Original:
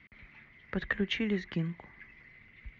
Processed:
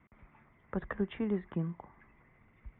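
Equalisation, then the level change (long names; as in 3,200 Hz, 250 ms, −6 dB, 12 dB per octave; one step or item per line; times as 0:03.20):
Chebyshev low-pass with heavy ripple 3,600 Hz, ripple 3 dB
high shelf with overshoot 1,600 Hz −13 dB, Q 1.5
+1.0 dB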